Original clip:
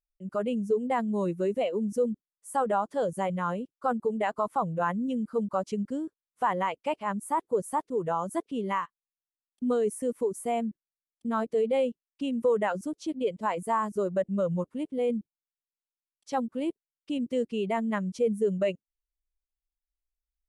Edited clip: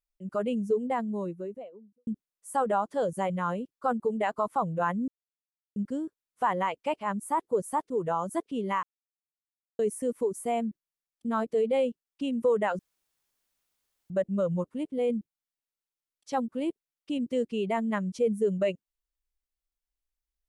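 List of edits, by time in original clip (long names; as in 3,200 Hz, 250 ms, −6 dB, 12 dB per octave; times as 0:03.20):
0:00.56–0:02.07: fade out and dull
0:05.08–0:05.76: silence
0:08.83–0:09.79: silence
0:12.79–0:14.10: fill with room tone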